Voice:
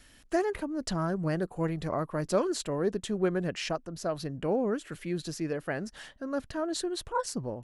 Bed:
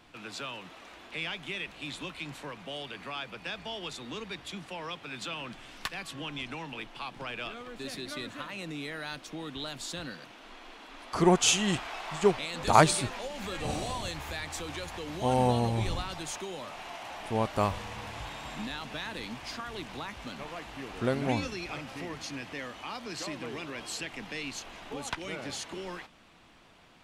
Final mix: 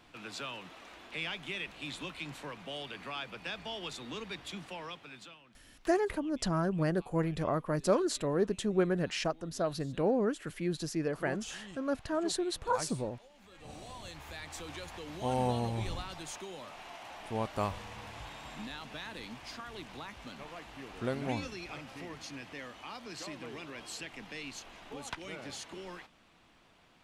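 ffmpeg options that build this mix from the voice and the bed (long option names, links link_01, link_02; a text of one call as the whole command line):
ffmpeg -i stem1.wav -i stem2.wav -filter_complex "[0:a]adelay=5550,volume=-0.5dB[link_01];[1:a]volume=13.5dB,afade=type=out:start_time=4.65:duration=0.75:silence=0.112202,afade=type=in:start_time=13.49:duration=1.19:silence=0.16788[link_02];[link_01][link_02]amix=inputs=2:normalize=0" out.wav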